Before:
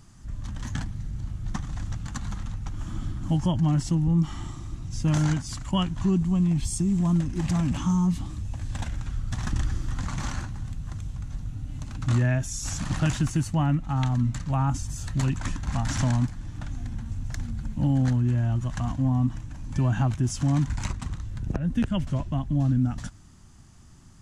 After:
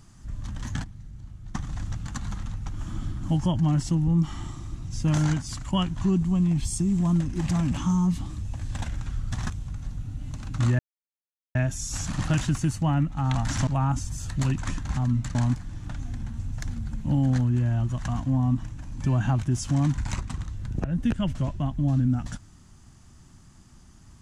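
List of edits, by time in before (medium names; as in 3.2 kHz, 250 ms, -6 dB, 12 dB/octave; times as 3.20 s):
0.84–1.55 s: gain -9 dB
9.50–10.98 s: delete
12.27 s: insert silence 0.76 s
14.07–14.45 s: swap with 15.75–16.07 s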